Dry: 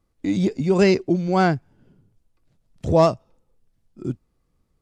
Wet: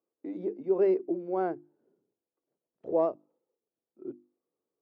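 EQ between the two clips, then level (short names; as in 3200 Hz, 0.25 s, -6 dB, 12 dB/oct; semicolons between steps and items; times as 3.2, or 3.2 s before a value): ladder band-pass 450 Hz, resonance 45%; low shelf 430 Hz -6.5 dB; notches 50/100/150/200/250/300/350 Hz; +3.5 dB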